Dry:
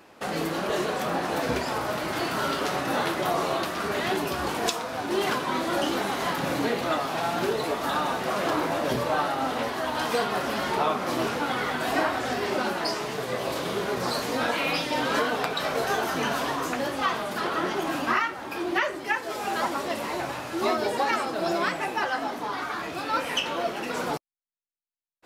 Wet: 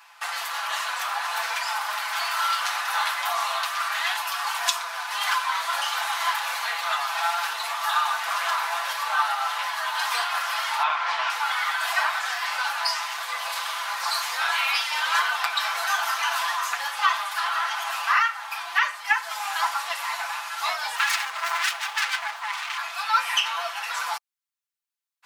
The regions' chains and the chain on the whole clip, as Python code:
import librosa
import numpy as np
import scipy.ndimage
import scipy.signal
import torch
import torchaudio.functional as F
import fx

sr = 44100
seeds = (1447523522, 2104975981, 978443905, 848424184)

y = fx.chain(x, sr, fx.notch(hz=1200.0, q=14.0),
    fx.leveller(passes=1),
    fx.bandpass_edges(low_hz=450.0, high_hz=3500.0), at=(10.83, 11.3))
y = fx.chain(y, sr, fx.self_delay(depth_ms=0.76),
    fx.high_shelf(hz=3600.0, db=-6.5), at=(20.96, 22.78))
y = scipy.signal.sosfilt(scipy.signal.butter(6, 880.0, 'highpass', fs=sr, output='sos'), y)
y = y + 0.65 * np.pad(y, (int(5.9 * sr / 1000.0), 0))[:len(y)]
y = y * librosa.db_to_amplitude(3.5)